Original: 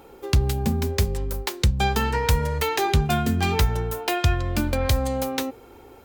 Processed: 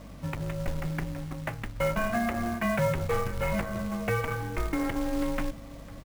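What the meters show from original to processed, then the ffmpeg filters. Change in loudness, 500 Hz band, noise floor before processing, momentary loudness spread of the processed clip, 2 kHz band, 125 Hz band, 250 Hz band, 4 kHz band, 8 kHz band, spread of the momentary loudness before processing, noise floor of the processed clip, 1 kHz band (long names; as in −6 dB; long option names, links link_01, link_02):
−7.0 dB, −4.0 dB, −47 dBFS, 9 LU, −4.0 dB, −9.5 dB, −3.5 dB, −15.0 dB, −12.0 dB, 5 LU, −45 dBFS, −7.5 dB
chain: -filter_complex "[0:a]highpass=57,flanger=delay=1.4:depth=3.8:regen=-70:speed=0.86:shape=sinusoidal,asoftclip=type=tanh:threshold=-23dB,highpass=frequency=180:width_type=q:width=0.5412,highpass=frequency=180:width_type=q:width=1.307,lowpass=frequency=2600:width_type=q:width=0.5176,lowpass=frequency=2600:width_type=q:width=0.7071,lowpass=frequency=2600:width_type=q:width=1.932,afreqshift=-240,acrusher=bits=9:mix=0:aa=0.000001,aeval=exprs='val(0)+0.00316*(sin(2*PI*50*n/s)+sin(2*PI*2*50*n/s)/2+sin(2*PI*3*50*n/s)/3+sin(2*PI*4*50*n/s)/4+sin(2*PI*5*50*n/s)/5)':channel_layout=same,asplit=2[link_01][link_02];[link_02]adelay=501.5,volume=-19dB,highshelf=frequency=4000:gain=-11.3[link_03];[link_01][link_03]amix=inputs=2:normalize=0,acrusher=bits=4:mode=log:mix=0:aa=0.000001,volume=4dB"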